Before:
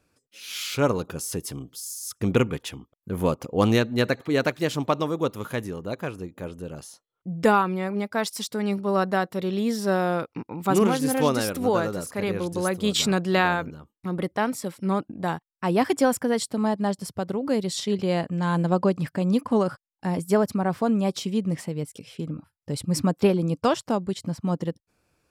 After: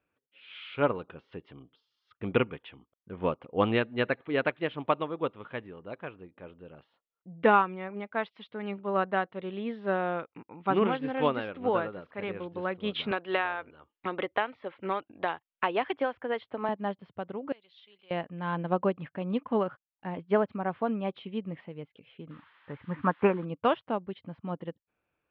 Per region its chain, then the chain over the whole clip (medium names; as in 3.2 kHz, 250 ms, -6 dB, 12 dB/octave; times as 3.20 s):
13.11–16.69 s: peaking EQ 180 Hz -13.5 dB 0.99 oct + three bands compressed up and down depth 100%
17.52–18.11 s: differentiator + band-stop 1.9 kHz, Q 16
22.29–23.44 s: steep low-pass 2.7 kHz 72 dB/octave + added noise blue -42 dBFS + high-order bell 1.3 kHz +10 dB 1.3 oct
whole clip: steep low-pass 3.3 kHz 48 dB/octave; bass shelf 290 Hz -8.5 dB; upward expansion 1.5:1, over -35 dBFS